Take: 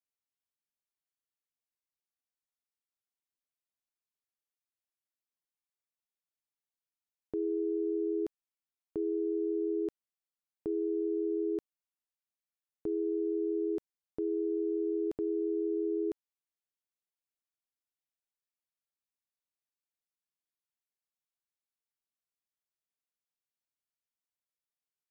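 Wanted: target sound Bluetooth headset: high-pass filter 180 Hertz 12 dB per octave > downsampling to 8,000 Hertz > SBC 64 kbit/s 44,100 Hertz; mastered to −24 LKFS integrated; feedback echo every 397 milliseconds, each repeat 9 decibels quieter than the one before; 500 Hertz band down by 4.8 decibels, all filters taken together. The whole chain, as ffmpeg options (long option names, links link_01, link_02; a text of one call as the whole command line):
ffmpeg -i in.wav -af "highpass=180,equalizer=frequency=500:width_type=o:gain=-6.5,aecho=1:1:397|794|1191|1588:0.355|0.124|0.0435|0.0152,aresample=8000,aresample=44100,volume=13dB" -ar 44100 -c:a sbc -b:a 64k out.sbc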